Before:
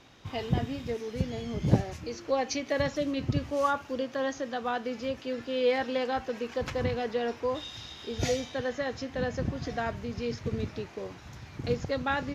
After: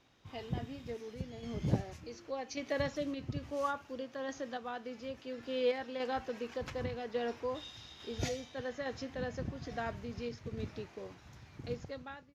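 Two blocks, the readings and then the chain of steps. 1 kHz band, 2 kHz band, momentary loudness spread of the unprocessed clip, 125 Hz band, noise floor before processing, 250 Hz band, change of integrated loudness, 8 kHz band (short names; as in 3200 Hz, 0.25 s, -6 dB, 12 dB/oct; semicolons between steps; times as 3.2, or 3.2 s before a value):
-8.5 dB, -8.5 dB, 10 LU, -8.5 dB, -48 dBFS, -8.0 dB, -8.0 dB, n/a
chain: ending faded out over 0.74 s; random-step tremolo; gain -5 dB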